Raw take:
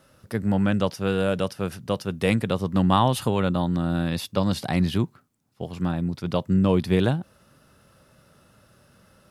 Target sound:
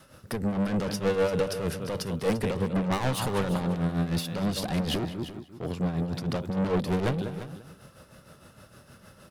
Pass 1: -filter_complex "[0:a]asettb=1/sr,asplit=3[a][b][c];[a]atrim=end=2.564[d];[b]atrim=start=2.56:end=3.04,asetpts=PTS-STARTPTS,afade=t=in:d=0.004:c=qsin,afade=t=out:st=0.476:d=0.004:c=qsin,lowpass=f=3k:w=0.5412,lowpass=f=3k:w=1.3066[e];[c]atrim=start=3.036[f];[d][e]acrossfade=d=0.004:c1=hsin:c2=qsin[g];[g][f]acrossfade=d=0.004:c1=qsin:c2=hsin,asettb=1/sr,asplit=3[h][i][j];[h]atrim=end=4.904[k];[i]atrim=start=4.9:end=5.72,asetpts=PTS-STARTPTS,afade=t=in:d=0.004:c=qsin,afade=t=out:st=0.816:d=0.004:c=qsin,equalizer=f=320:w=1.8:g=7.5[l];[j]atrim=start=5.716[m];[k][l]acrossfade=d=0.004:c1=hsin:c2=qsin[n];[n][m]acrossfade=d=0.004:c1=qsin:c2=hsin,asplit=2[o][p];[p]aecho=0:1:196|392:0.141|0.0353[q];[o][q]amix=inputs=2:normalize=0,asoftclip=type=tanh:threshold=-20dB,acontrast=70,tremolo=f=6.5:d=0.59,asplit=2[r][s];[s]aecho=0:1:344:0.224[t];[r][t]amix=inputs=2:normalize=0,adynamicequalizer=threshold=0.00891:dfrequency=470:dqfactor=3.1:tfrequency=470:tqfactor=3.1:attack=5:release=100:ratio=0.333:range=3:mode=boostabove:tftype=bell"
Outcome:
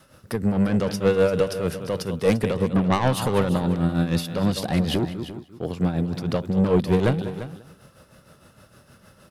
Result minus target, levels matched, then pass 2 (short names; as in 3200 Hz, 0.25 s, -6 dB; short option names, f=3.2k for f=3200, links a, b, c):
soft clip: distortion -6 dB
-filter_complex "[0:a]asettb=1/sr,asplit=3[a][b][c];[a]atrim=end=2.564[d];[b]atrim=start=2.56:end=3.04,asetpts=PTS-STARTPTS,afade=t=in:d=0.004:c=qsin,afade=t=out:st=0.476:d=0.004:c=qsin,lowpass=f=3k:w=0.5412,lowpass=f=3k:w=1.3066[e];[c]atrim=start=3.036[f];[d][e]acrossfade=d=0.004:c1=hsin:c2=qsin[g];[g][f]acrossfade=d=0.004:c1=qsin:c2=hsin,asettb=1/sr,asplit=3[h][i][j];[h]atrim=end=4.904[k];[i]atrim=start=4.9:end=5.72,asetpts=PTS-STARTPTS,afade=t=in:d=0.004:c=qsin,afade=t=out:st=0.816:d=0.004:c=qsin,equalizer=f=320:w=1.8:g=7.5[l];[j]atrim=start=5.716[m];[k][l]acrossfade=d=0.004:c1=hsin:c2=qsin[n];[n][m]acrossfade=d=0.004:c1=qsin:c2=hsin,asplit=2[o][p];[p]aecho=0:1:196|392:0.141|0.0353[q];[o][q]amix=inputs=2:normalize=0,asoftclip=type=tanh:threshold=-29.5dB,acontrast=70,tremolo=f=6.5:d=0.59,asplit=2[r][s];[s]aecho=0:1:344:0.224[t];[r][t]amix=inputs=2:normalize=0,adynamicequalizer=threshold=0.00891:dfrequency=470:dqfactor=3.1:tfrequency=470:tqfactor=3.1:attack=5:release=100:ratio=0.333:range=3:mode=boostabove:tftype=bell"